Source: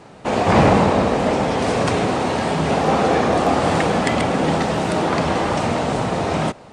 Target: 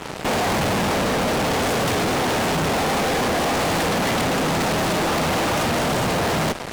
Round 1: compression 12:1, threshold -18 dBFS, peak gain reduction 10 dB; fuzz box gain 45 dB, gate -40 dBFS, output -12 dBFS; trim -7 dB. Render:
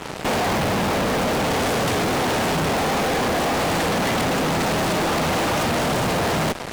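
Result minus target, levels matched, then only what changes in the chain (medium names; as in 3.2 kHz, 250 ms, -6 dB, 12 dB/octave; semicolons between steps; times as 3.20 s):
compression: peak gain reduction +10 dB
remove: compression 12:1, threshold -18 dBFS, peak gain reduction 10 dB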